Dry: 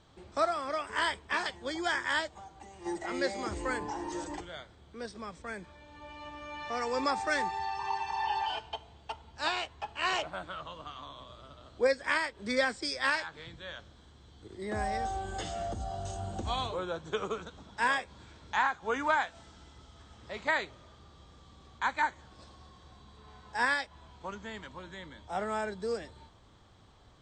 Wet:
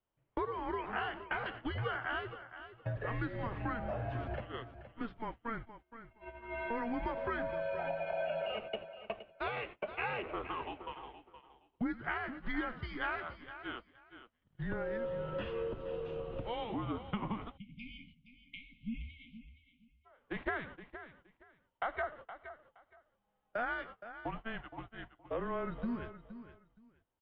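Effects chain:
echo with shifted repeats 89 ms, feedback 58%, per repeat −73 Hz, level −20 dB
noise gate −43 dBFS, range −28 dB
downward compressor 6 to 1, threshold −36 dBFS, peak gain reduction 13.5 dB
single-sideband voice off tune −230 Hz 180–3,100 Hz
repeating echo 469 ms, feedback 20%, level −12.5 dB
time-frequency box erased 0:17.57–0:20.06, 290–2,100 Hz
level +2.5 dB

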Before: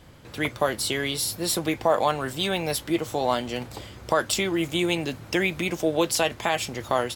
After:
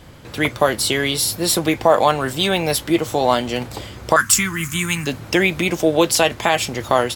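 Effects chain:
0:04.16–0:05.07: drawn EQ curve 220 Hz 0 dB, 330 Hz −15 dB, 660 Hz −24 dB, 1,100 Hz +3 dB, 1,700 Hz +5 dB, 3,700 Hz −8 dB, 6,500 Hz +7 dB
level +7.5 dB

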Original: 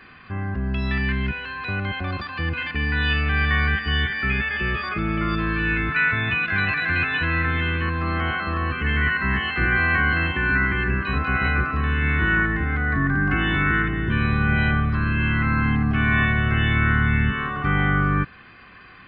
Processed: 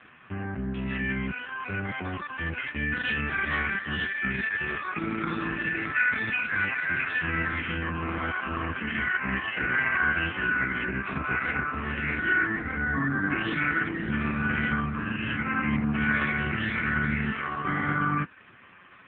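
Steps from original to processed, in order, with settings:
dynamic equaliser 120 Hz, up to −7 dB, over −37 dBFS, Q 1.6
level −1 dB
AMR narrowband 4.75 kbit/s 8,000 Hz

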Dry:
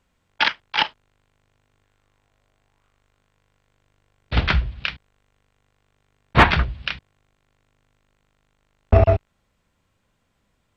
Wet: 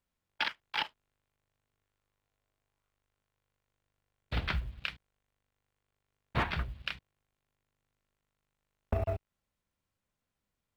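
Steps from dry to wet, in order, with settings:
mu-law and A-law mismatch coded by A
downward compressor 4 to 1, threshold −20 dBFS, peak gain reduction 11 dB
level −9 dB

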